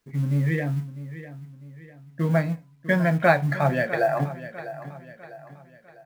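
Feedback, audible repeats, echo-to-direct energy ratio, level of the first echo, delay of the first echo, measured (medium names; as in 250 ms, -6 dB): 43%, 3, -13.0 dB, -14.0 dB, 650 ms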